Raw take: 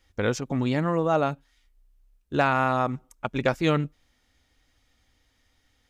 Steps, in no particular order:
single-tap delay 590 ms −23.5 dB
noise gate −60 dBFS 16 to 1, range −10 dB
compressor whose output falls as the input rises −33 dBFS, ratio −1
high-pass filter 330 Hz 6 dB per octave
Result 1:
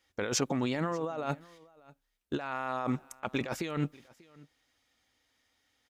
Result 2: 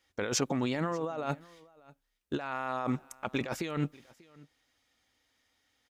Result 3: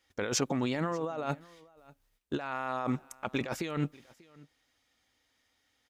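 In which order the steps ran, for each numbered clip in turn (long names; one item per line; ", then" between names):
high-pass filter, then noise gate, then compressor whose output falls as the input rises, then single-tap delay
high-pass filter, then compressor whose output falls as the input rises, then noise gate, then single-tap delay
noise gate, then high-pass filter, then compressor whose output falls as the input rises, then single-tap delay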